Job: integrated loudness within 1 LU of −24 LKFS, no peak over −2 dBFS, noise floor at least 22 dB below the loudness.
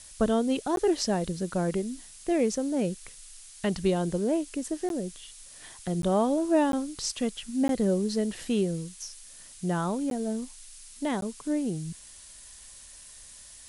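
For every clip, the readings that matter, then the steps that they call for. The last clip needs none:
number of dropouts 7; longest dropout 12 ms; background noise floor −49 dBFS; target noise floor −51 dBFS; integrated loudness −29.0 LKFS; sample peak −13.5 dBFS; target loudness −24.0 LKFS
→ repair the gap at 0:00.76/0:04.89/0:06.02/0:06.72/0:07.68/0:10.10/0:11.21, 12 ms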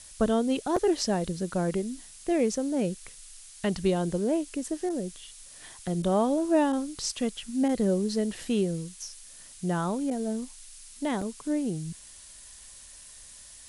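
number of dropouts 0; background noise floor −49 dBFS; target noise floor −51 dBFS
→ broadband denoise 6 dB, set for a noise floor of −49 dBFS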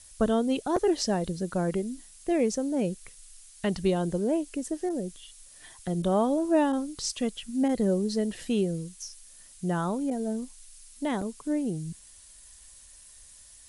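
background noise floor −52 dBFS; integrated loudness −29.0 LKFS; sample peak −12.5 dBFS; target loudness −24.0 LKFS
→ level +5 dB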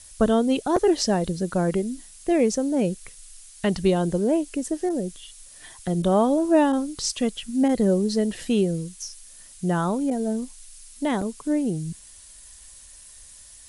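integrated loudness −24.0 LKFS; sample peak −7.5 dBFS; background noise floor −47 dBFS

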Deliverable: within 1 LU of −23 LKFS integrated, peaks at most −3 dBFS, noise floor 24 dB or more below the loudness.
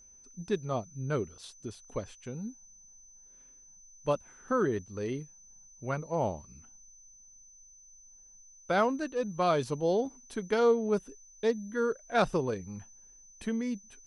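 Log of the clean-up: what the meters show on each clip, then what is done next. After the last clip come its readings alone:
interfering tone 6,100 Hz; level of the tone −54 dBFS; integrated loudness −32.0 LKFS; sample peak −15.0 dBFS; target loudness −23.0 LKFS
→ notch filter 6,100 Hz, Q 30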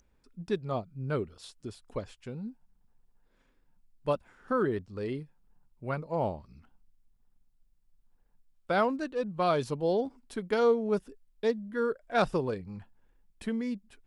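interfering tone none found; integrated loudness −32.0 LKFS; sample peak −15.0 dBFS; target loudness −23.0 LKFS
→ level +9 dB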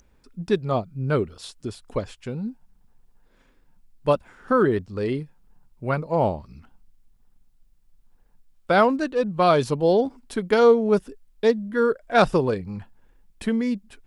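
integrated loudness −23.0 LKFS; sample peak −6.0 dBFS; background noise floor −60 dBFS

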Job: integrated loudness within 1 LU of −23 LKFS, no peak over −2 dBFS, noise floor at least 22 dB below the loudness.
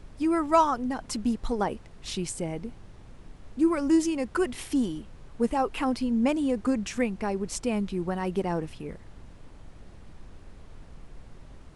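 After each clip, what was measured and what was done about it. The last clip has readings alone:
background noise floor −49 dBFS; target noise floor −50 dBFS; integrated loudness −28.0 LKFS; sample peak −9.0 dBFS; target loudness −23.0 LKFS
→ noise reduction from a noise print 6 dB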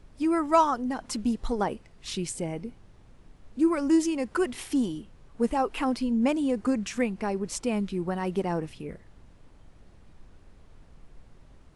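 background noise floor −54 dBFS; integrated loudness −28.0 LKFS; sample peak −9.0 dBFS; target loudness −23.0 LKFS
→ level +5 dB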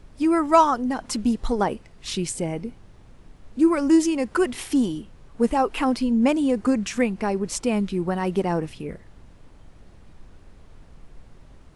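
integrated loudness −23.0 LKFS; sample peak −4.0 dBFS; background noise floor −49 dBFS

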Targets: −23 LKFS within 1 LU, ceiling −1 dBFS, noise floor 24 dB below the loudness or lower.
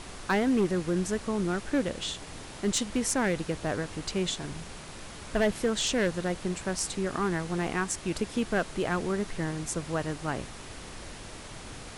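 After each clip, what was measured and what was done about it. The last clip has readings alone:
share of clipped samples 0.8%; peaks flattened at −19.5 dBFS; background noise floor −44 dBFS; target noise floor −54 dBFS; integrated loudness −30.0 LKFS; sample peak −19.5 dBFS; target loudness −23.0 LKFS
→ clipped peaks rebuilt −19.5 dBFS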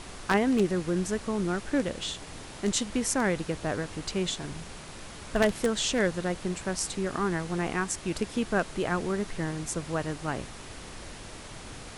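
share of clipped samples 0.0%; background noise floor −44 dBFS; target noise floor −54 dBFS
→ noise reduction from a noise print 10 dB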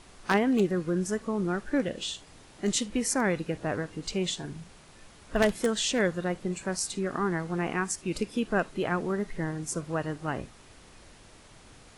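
background noise floor −54 dBFS; integrated loudness −29.5 LKFS; sample peak −10.5 dBFS; target loudness −23.0 LKFS
→ level +6.5 dB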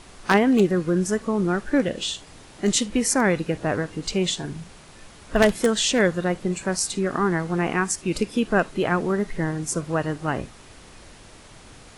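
integrated loudness −23.0 LKFS; sample peak −4.0 dBFS; background noise floor −47 dBFS

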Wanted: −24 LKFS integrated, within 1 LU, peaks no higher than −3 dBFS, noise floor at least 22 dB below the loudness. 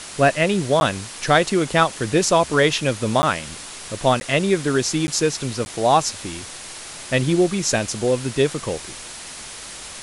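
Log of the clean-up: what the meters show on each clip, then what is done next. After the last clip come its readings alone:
number of dropouts 5; longest dropout 10 ms; background noise floor −36 dBFS; target noise floor −42 dBFS; integrated loudness −20.0 LKFS; sample peak −2.5 dBFS; target loudness −24.0 LKFS
→ repair the gap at 0:00.80/0:03.22/0:04.20/0:05.07/0:05.65, 10 ms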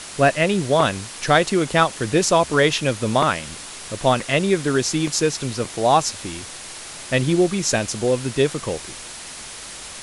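number of dropouts 0; background noise floor −36 dBFS; target noise floor −42 dBFS
→ broadband denoise 6 dB, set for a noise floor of −36 dBFS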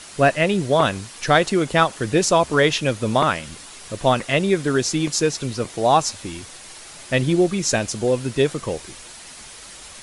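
background noise floor −41 dBFS; target noise floor −42 dBFS
→ broadband denoise 6 dB, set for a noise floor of −41 dBFS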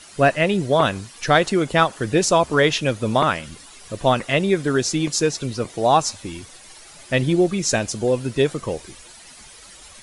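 background noise floor −44 dBFS; integrated loudness −20.0 LKFS; sample peak −2.5 dBFS; target loudness −24.0 LKFS
→ level −4 dB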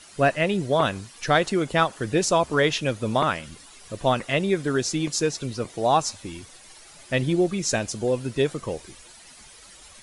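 integrated loudness −24.0 LKFS; sample peak −6.5 dBFS; background noise floor −48 dBFS

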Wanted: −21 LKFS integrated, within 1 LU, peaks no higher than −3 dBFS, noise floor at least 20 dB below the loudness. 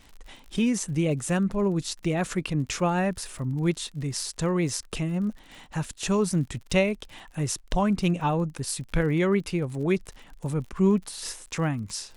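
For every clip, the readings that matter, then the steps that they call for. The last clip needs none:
crackle rate 50 per second; integrated loudness −27.0 LKFS; sample peak −11.0 dBFS; target loudness −21.0 LKFS
→ click removal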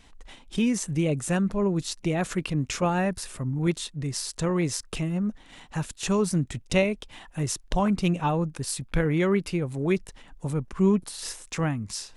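crackle rate 0.082 per second; integrated loudness −27.5 LKFS; sample peak −11.0 dBFS; target loudness −21.0 LKFS
→ level +6.5 dB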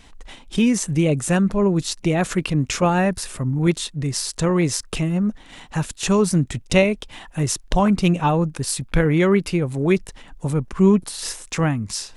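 integrated loudness −21.0 LKFS; sample peak −4.5 dBFS; background noise floor −47 dBFS

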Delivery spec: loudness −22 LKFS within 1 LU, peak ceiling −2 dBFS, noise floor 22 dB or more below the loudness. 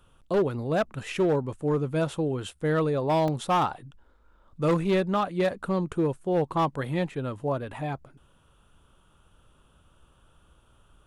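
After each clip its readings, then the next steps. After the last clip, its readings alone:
share of clipped samples 1.2%; peaks flattened at −18.5 dBFS; number of dropouts 1; longest dropout 2.8 ms; integrated loudness −27.5 LKFS; sample peak −18.5 dBFS; target loudness −22.0 LKFS
→ clipped peaks rebuilt −18.5 dBFS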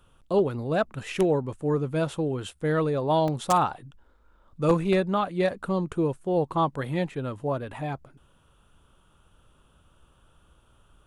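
share of clipped samples 0.0%; number of dropouts 1; longest dropout 2.8 ms
→ repair the gap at 0:03.28, 2.8 ms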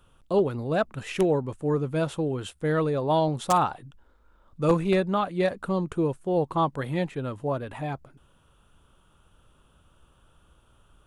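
number of dropouts 0; integrated loudness −26.5 LKFS; sample peak −9.5 dBFS; target loudness −22.0 LKFS
→ level +4.5 dB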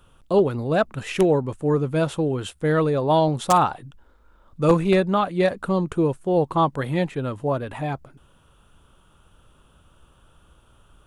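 integrated loudness −22.0 LKFS; sample peak −5.0 dBFS; background noise floor −57 dBFS

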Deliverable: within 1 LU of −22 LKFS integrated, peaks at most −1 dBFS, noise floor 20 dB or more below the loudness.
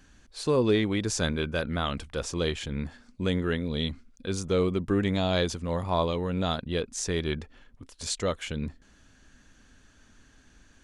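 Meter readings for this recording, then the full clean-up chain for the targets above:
integrated loudness −29.0 LKFS; sample peak −12.5 dBFS; target loudness −22.0 LKFS
→ level +7 dB

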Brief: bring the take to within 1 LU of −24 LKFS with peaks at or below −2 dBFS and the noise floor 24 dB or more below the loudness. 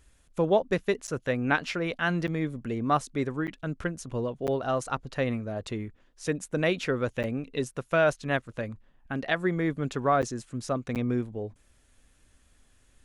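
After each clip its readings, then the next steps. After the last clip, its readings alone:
number of dropouts 7; longest dropout 8.4 ms; integrated loudness −29.5 LKFS; sample peak −10.0 dBFS; target loudness −24.0 LKFS
→ repair the gap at 0:01.07/0:02.27/0:03.47/0:04.47/0:07.23/0:10.22/0:10.95, 8.4 ms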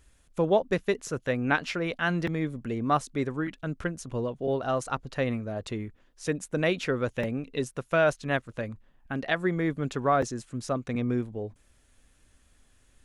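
number of dropouts 0; integrated loudness −29.5 LKFS; sample peak −10.0 dBFS; target loudness −24.0 LKFS
→ level +5.5 dB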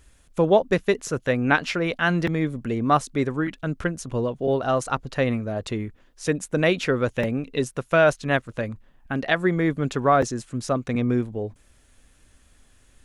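integrated loudness −24.0 LKFS; sample peak −4.5 dBFS; background noise floor −58 dBFS

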